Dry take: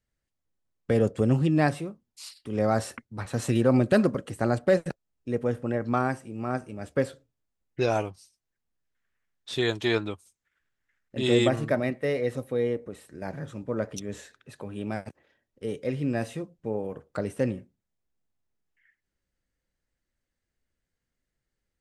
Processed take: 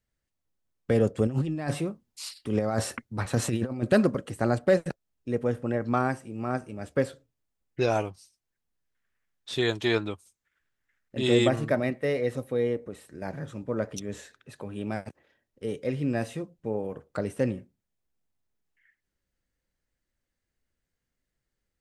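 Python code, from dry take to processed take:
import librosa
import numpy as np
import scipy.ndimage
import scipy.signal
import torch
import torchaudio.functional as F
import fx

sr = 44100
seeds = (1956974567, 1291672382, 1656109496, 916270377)

y = fx.over_compress(x, sr, threshold_db=-26.0, ratio=-0.5, at=(1.27, 3.83))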